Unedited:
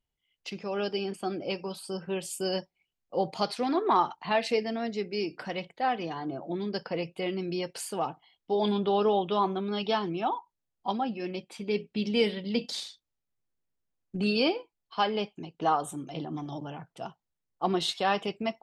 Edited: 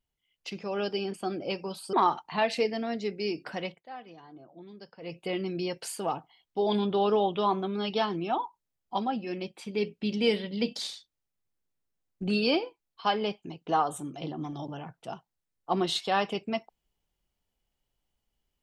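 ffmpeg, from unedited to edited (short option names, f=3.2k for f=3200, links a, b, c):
-filter_complex "[0:a]asplit=4[a][b][c][d];[a]atrim=end=1.932[e];[b]atrim=start=3.858:end=5.76,asetpts=PTS-STARTPTS,afade=t=out:st=1.722:d=0.18:silence=0.177828[f];[c]atrim=start=5.76:end=6.94,asetpts=PTS-STARTPTS,volume=-15dB[g];[d]atrim=start=6.94,asetpts=PTS-STARTPTS,afade=t=in:d=0.18:silence=0.177828[h];[f][g][h]concat=n=3:v=0:a=1[i];[e][i]acrossfade=d=0.004:c1=hsin:c2=hsin"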